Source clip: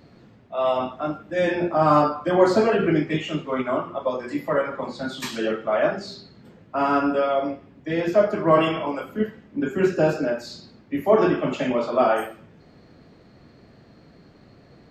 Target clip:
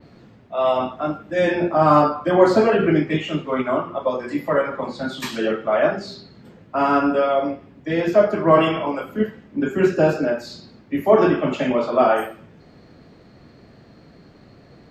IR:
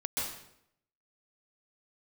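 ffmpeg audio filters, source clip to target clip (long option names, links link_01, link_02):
-af "adynamicequalizer=threshold=0.00355:dfrequency=6800:dqfactor=0.84:tfrequency=6800:tqfactor=0.84:attack=5:release=100:ratio=0.375:range=2:mode=cutabove:tftype=bell,volume=3dB"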